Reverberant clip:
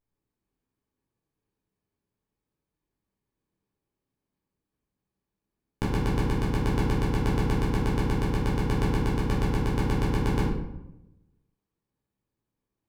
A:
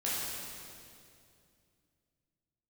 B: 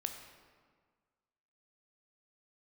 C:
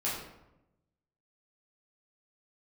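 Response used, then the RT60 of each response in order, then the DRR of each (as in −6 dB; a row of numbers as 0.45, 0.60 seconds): C; 2.5, 1.6, 0.90 seconds; −8.5, 4.5, −8.5 decibels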